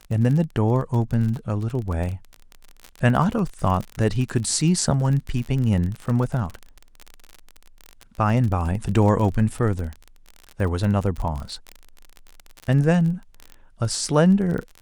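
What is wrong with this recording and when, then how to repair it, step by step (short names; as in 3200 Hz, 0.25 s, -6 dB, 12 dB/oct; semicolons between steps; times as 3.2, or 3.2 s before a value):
crackle 36/s -27 dBFS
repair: de-click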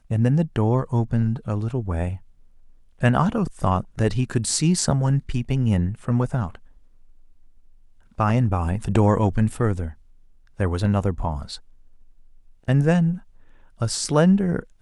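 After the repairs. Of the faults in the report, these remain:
none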